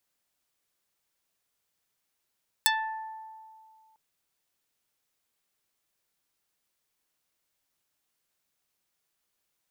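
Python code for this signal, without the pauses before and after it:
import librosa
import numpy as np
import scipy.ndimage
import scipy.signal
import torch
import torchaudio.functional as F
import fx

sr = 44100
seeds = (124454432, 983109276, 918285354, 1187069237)

y = fx.pluck(sr, length_s=1.3, note=81, decay_s=2.22, pick=0.37, brightness='dark')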